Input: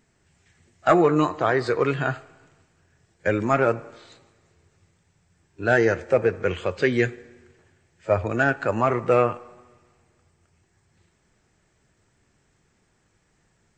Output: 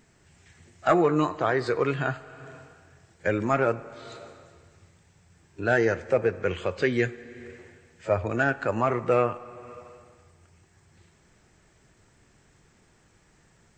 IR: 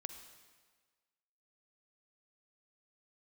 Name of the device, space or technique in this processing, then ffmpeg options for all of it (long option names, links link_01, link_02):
ducked reverb: -filter_complex "[0:a]asplit=3[link_01][link_02][link_03];[1:a]atrim=start_sample=2205[link_04];[link_02][link_04]afir=irnorm=-1:irlink=0[link_05];[link_03]apad=whole_len=607570[link_06];[link_05][link_06]sidechaincompress=threshold=-41dB:ratio=5:attack=11:release=280,volume=9.5dB[link_07];[link_01][link_07]amix=inputs=2:normalize=0,volume=-4.5dB"